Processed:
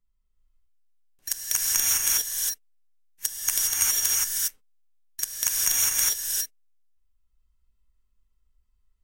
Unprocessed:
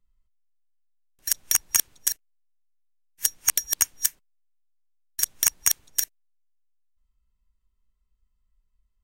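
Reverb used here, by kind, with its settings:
reverb whose tail is shaped and stops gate 430 ms rising, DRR −6 dB
level −5 dB

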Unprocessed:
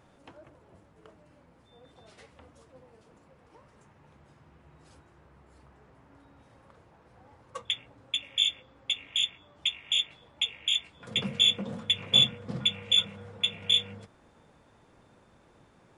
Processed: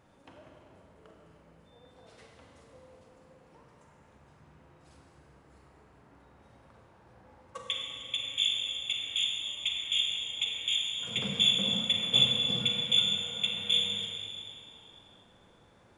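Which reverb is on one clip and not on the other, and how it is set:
four-comb reverb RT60 2.5 s, combs from 33 ms, DRR 0 dB
level −3.5 dB

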